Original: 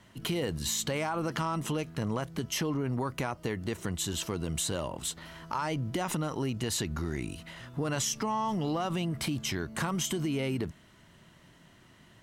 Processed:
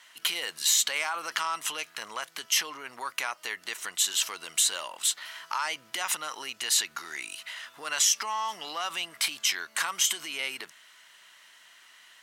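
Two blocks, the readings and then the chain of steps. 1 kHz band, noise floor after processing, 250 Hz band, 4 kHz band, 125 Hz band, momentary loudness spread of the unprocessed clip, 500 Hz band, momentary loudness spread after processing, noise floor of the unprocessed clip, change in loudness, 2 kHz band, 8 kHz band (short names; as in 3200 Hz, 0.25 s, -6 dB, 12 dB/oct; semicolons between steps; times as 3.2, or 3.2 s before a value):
+1.0 dB, -58 dBFS, -20.5 dB, +9.0 dB, under -30 dB, 5 LU, -10.0 dB, 14 LU, -58 dBFS, +4.0 dB, +7.5 dB, +9.0 dB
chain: HPF 1500 Hz 12 dB/oct; gain +9 dB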